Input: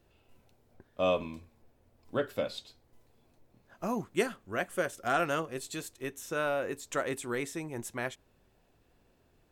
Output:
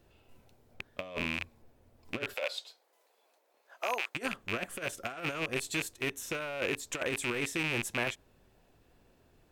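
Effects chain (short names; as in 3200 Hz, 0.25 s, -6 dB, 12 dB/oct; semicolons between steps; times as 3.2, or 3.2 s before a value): rattling part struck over -49 dBFS, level -23 dBFS; 2.34–4.15 HPF 500 Hz 24 dB/oct; negative-ratio compressor -33 dBFS, ratio -0.5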